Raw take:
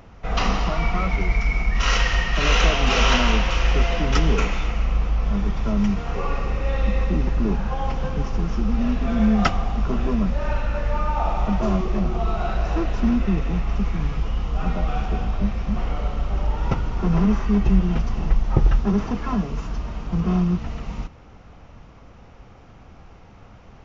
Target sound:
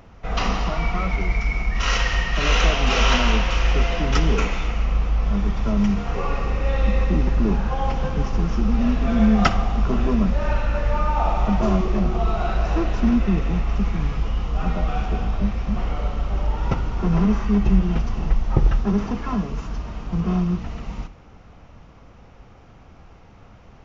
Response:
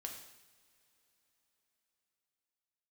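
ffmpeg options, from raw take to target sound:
-filter_complex "[0:a]dynaudnorm=f=350:g=31:m=11.5dB,asplit=2[a][b];[1:a]atrim=start_sample=2205,adelay=59[c];[b][c]afir=irnorm=-1:irlink=0,volume=-12.5dB[d];[a][d]amix=inputs=2:normalize=0,volume=-1dB"

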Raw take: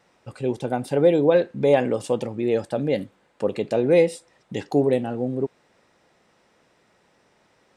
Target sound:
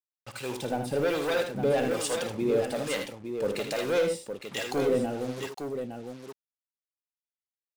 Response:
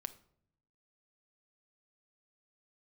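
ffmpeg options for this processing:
-filter_complex "[0:a]tiltshelf=f=970:g=-5.5,asoftclip=type=tanh:threshold=-21.5dB,acrusher=bits=6:mix=0:aa=0.5,acrossover=split=700[a][b];[a]aeval=exprs='val(0)*(1-0.7/2+0.7/2*cos(2*PI*1.2*n/s))':c=same[c];[b]aeval=exprs='val(0)*(1-0.7/2-0.7/2*cos(2*PI*1.2*n/s))':c=same[d];[c][d]amix=inputs=2:normalize=0,asplit=2[e][f];[f]aecho=0:1:55|79|860:0.266|0.422|0.447[g];[e][g]amix=inputs=2:normalize=0,volume=2.5dB"

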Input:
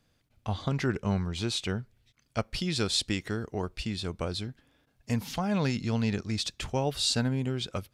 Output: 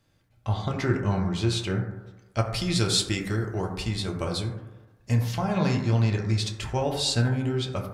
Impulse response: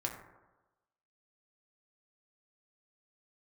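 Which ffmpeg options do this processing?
-filter_complex "[0:a]asettb=1/sr,asplit=3[a][b][c];[a]atrim=end=2.384[d];[b]atrim=start=2.38:end=4.43,asetpts=PTS-STARTPTS,afade=t=in:d=0.004:c=qsin,afade=t=out:st=2.046:d=0.004:c=qsin,highshelf=f=6.8k:g=9[e];[c]atrim=start=4.426[f];[d][e]acrossfade=d=0.004:c1=hsin:c2=qsin[g];[g][f]acrossfade=d=0.004:c1=qsin:c2=hsin[h];[1:a]atrim=start_sample=2205[i];[h][i]afir=irnorm=-1:irlink=0,volume=1.5dB"

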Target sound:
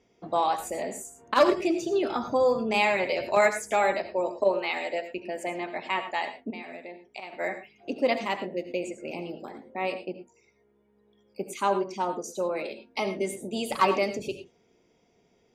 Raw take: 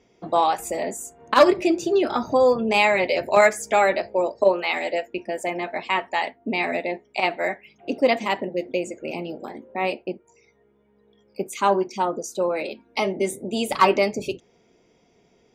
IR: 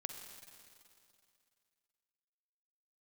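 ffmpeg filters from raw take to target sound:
-filter_complex "[0:a]asettb=1/sr,asplit=3[a][b][c];[a]atrim=end=6.504[d];[b]atrim=start=6.5:end=7.33,asetpts=PTS-STARTPTS,afade=t=in:d=0.004:c=qsin,afade=t=out:st=0.826:d=0.004:c=qsin,acompressor=threshold=-32dB:ratio=10[e];[c]atrim=start=7.326[f];[d][e]acrossfade=d=0.004:c1=hsin:c2=qsin[g];[g][f]acrossfade=d=0.004:c1=qsin:c2=hsin[h];[1:a]atrim=start_sample=2205,atrim=end_sample=3528,asetrate=27342,aresample=44100[i];[h][i]afir=irnorm=-1:irlink=0,volume=-5dB"

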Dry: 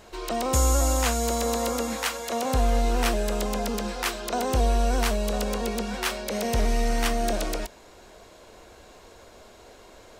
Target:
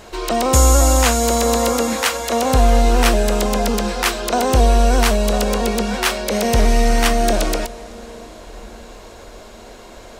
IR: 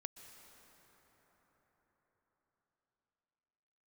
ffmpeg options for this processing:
-filter_complex "[0:a]asplit=2[a][b];[1:a]atrim=start_sample=2205,asetrate=23814,aresample=44100[c];[b][c]afir=irnorm=-1:irlink=0,volume=-10.5dB[d];[a][d]amix=inputs=2:normalize=0,volume=7.5dB"

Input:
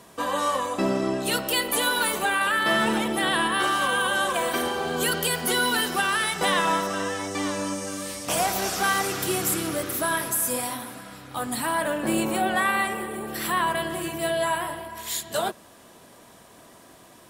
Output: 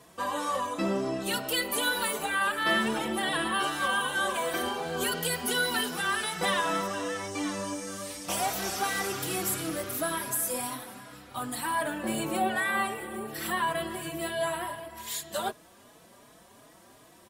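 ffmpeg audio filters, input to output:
-filter_complex "[0:a]asplit=2[a][b];[b]adelay=4.3,afreqshift=2.7[c];[a][c]amix=inputs=2:normalize=1,volume=-2dB"

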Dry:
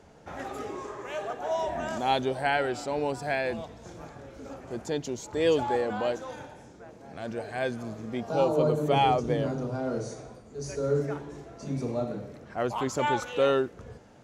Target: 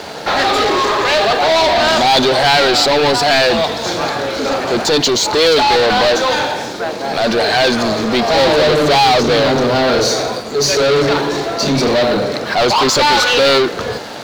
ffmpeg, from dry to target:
-filter_complex "[0:a]asplit=2[a][b];[b]highpass=f=720:p=1,volume=33dB,asoftclip=type=tanh:threshold=-12.5dB[c];[a][c]amix=inputs=2:normalize=0,lowpass=f=3k:p=1,volume=-6dB,equalizer=f=4.2k:w=1.9:g=14,aeval=exprs='sgn(val(0))*max(abs(val(0))-0.0075,0)':c=same,volume=7dB"

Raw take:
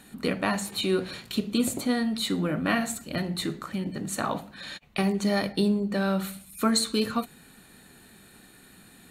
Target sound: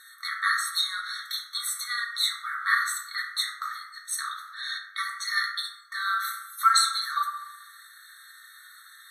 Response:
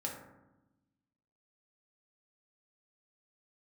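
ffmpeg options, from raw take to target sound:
-filter_complex "[0:a]asettb=1/sr,asplit=3[a][b][c];[a]atrim=end=3.944[d];[b]atrim=start=3.94:end=4.39,asetpts=PTS-STARTPTS,afade=t=in:d=0.004:c=qsin,afade=t=out:st=0.446:d=0.004:c=qsin,equalizer=f=550:t=o:w=2.9:g=-14.5[e];[c]atrim=start=4.386[f];[d][e]acrossfade=d=0.004:c1=hsin:c2=qsin[g];[g][f]acrossfade=d=0.004:c1=qsin:c2=hsin[h];[1:a]atrim=start_sample=2205[i];[h][i]afir=irnorm=-1:irlink=0,afftfilt=real='re*eq(mod(floor(b*sr/1024/1100),2),1)':imag='im*eq(mod(floor(b*sr/1024/1100),2),1)':win_size=1024:overlap=0.75,volume=7.5dB"

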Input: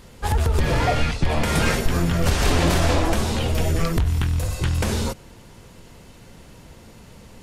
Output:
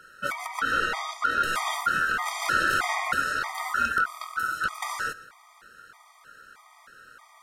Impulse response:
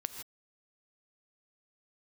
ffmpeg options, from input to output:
-filter_complex "[0:a]aeval=exprs='val(0)*sin(2*PI*1400*n/s)':c=same,asplit=2[a][b];[1:a]atrim=start_sample=2205[c];[b][c]afir=irnorm=-1:irlink=0,volume=-8dB[d];[a][d]amix=inputs=2:normalize=0,afftfilt=real='re*gt(sin(2*PI*1.6*pts/sr)*(1-2*mod(floor(b*sr/1024/630),2)),0)':imag='im*gt(sin(2*PI*1.6*pts/sr)*(1-2*mod(floor(b*sr/1024/630),2)),0)':win_size=1024:overlap=0.75,volume=-4dB"

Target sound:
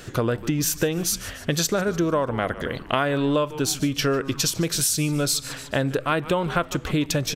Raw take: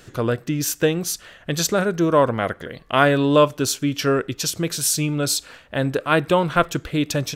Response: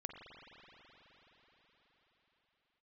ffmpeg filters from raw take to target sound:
-filter_complex "[0:a]asplit=2[a][b];[b]asplit=4[c][d][e][f];[c]adelay=147,afreqshift=-140,volume=-19dB[g];[d]adelay=294,afreqshift=-280,volume=-24.8dB[h];[e]adelay=441,afreqshift=-420,volume=-30.7dB[i];[f]adelay=588,afreqshift=-560,volume=-36.5dB[j];[g][h][i][j]amix=inputs=4:normalize=0[k];[a][k]amix=inputs=2:normalize=0,acompressor=threshold=-26dB:ratio=6,volume=6dB"

